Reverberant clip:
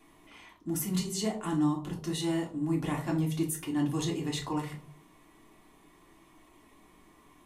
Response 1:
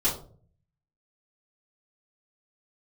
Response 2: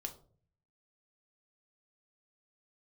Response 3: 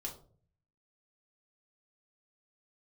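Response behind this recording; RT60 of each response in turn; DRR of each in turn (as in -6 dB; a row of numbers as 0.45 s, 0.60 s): 3; 0.45 s, 0.45 s, 0.45 s; -11.0 dB, 3.5 dB, -2.0 dB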